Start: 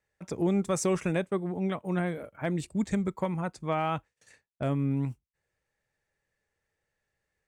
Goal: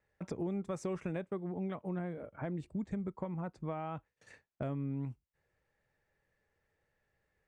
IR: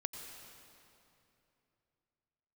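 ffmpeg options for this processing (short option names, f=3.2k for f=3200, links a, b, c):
-af "acompressor=threshold=-43dB:ratio=3,asetnsamples=n=441:p=0,asendcmd='1.89 lowpass f 1000;3.97 lowpass f 2000',lowpass=f=1.8k:p=1,volume=4dB"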